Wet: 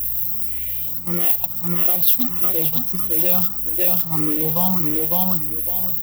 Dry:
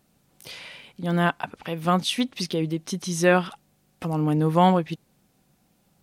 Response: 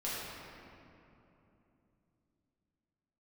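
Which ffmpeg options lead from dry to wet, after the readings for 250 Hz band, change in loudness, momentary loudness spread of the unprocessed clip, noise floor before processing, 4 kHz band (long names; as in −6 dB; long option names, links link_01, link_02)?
−2.0 dB, +8.0 dB, 19 LU, −66 dBFS, −2.0 dB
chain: -filter_complex "[0:a]aeval=exprs='val(0)+0.5*0.0891*sgn(val(0))':channel_layout=same,agate=range=-30dB:threshold=-19dB:ratio=16:detection=peak,highshelf=frequency=8100:gain=7.5,acrossover=split=190|3000[link_01][link_02][link_03];[link_02]acompressor=threshold=-20dB:ratio=6[link_04];[link_01][link_04][link_03]amix=inputs=3:normalize=0,asplit=2[link_05][link_06];[link_06]aecho=0:1:553|1106|1659:0.299|0.0567|0.0108[link_07];[link_05][link_07]amix=inputs=2:normalize=0,aexciter=amount=14.3:drive=7:freq=11000,aeval=exprs='val(0)+0.00355*(sin(2*PI*60*n/s)+sin(2*PI*2*60*n/s)/2+sin(2*PI*3*60*n/s)/3+sin(2*PI*4*60*n/s)/4+sin(2*PI*5*60*n/s)/5)':channel_layout=same,asuperstop=centerf=1600:order=8:qfactor=4.9,alimiter=level_in=12dB:limit=-1dB:release=50:level=0:latency=1,asplit=2[link_08][link_09];[link_09]afreqshift=1.6[link_10];[link_08][link_10]amix=inputs=2:normalize=1"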